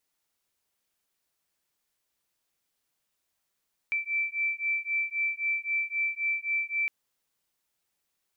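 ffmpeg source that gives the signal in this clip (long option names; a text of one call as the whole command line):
ffmpeg -f lavfi -i "aevalsrc='0.0316*(sin(2*PI*2330*t)+sin(2*PI*2333.8*t))':duration=2.96:sample_rate=44100" out.wav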